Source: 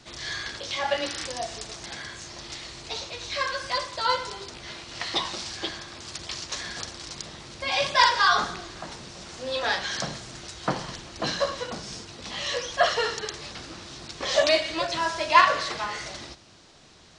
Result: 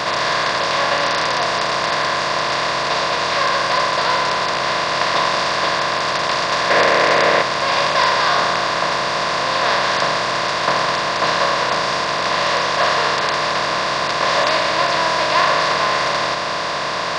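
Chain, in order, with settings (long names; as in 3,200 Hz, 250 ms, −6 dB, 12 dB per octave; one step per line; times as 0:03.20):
compressor on every frequency bin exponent 0.2
0:06.70–0:07.42: octave-band graphic EQ 250/500/2,000 Hz +4/+10/+7 dB
level −4.5 dB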